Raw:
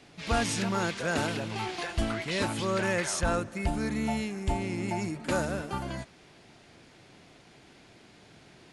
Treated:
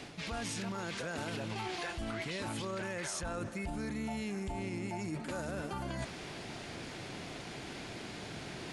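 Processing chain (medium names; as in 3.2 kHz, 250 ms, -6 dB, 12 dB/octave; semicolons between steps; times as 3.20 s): peak limiter -28.5 dBFS, peak gain reduction 11 dB; reverse; compression 4:1, threshold -50 dBFS, peak gain reduction 14.5 dB; reverse; trim +11.5 dB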